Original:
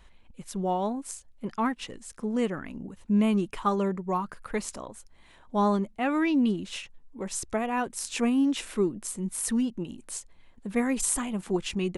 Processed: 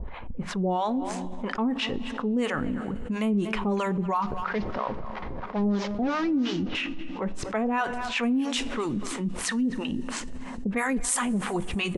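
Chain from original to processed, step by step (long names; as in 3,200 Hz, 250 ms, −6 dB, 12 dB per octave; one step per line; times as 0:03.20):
0:04.22–0:06.75: linear delta modulator 32 kbit/s, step −44.5 dBFS
low-pass that shuts in the quiet parts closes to 1,000 Hz, open at −21 dBFS
two-band tremolo in antiphase 3 Hz, depth 100%, crossover 660 Hz
far-end echo of a speakerphone 240 ms, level −20 dB
coupled-rooms reverb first 0.24 s, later 2.9 s, from −18 dB, DRR 14.5 dB
envelope flattener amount 70%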